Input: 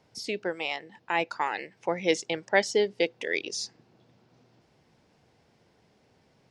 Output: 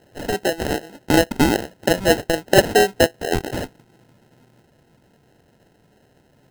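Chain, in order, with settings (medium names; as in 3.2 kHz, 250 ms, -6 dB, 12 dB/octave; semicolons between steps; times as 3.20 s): peaking EQ 790 Hz +6.5 dB 0.92 oct, from 3.28 s -2 dB; sample-and-hold 38×; trim +8 dB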